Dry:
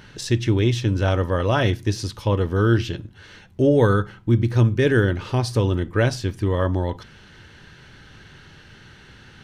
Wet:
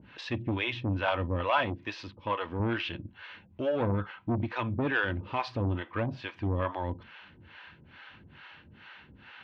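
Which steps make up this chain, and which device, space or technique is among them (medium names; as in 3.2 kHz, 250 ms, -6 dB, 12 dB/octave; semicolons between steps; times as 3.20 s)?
guitar amplifier with harmonic tremolo (harmonic tremolo 2.3 Hz, depth 100%, crossover 490 Hz; saturation -19 dBFS, distortion -12 dB; cabinet simulation 85–3400 Hz, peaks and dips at 120 Hz -9 dB, 170 Hz -4 dB, 410 Hz -9 dB, 1 kHz +6 dB, 2.5 kHz +6 dB); 1.50–2.60 s: bass shelf 130 Hz -10.5 dB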